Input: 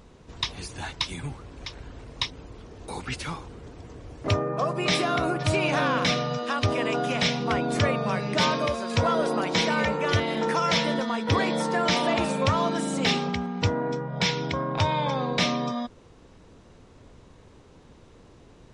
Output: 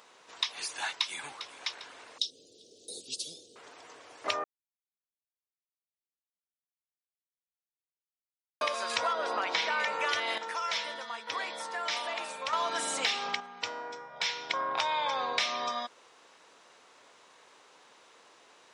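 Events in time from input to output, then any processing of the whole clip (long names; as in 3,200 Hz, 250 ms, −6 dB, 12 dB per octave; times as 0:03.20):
0:00.81–0:01.46: delay throw 400 ms, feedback 50%, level −17.5 dB
0:02.18–0:03.56: inverse Chebyshev band-stop filter 880–2,100 Hz, stop band 50 dB
0:04.44–0:08.61: silence
0:09.13–0:09.80: high-frequency loss of the air 110 metres
0:10.38–0:12.53: clip gain −10 dB
0:13.40–0:14.50: tuned comb filter 150 Hz, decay 0.73 s
whole clip: high-pass filter 900 Hz 12 dB per octave; downward compressor, threshold −30 dBFS; level +3.5 dB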